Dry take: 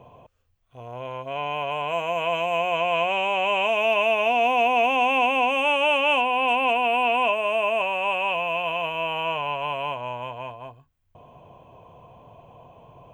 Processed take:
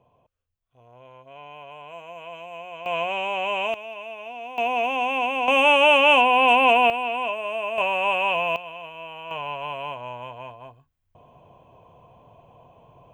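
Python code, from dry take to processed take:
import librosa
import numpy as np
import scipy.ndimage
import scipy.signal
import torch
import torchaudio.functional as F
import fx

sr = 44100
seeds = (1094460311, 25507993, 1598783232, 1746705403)

y = fx.gain(x, sr, db=fx.steps((0.0, -14.0), (2.86, -3.0), (3.74, -15.5), (4.58, -3.5), (5.48, 5.0), (6.9, -5.0), (7.78, 2.0), (8.56, -11.0), (9.31, -3.5)))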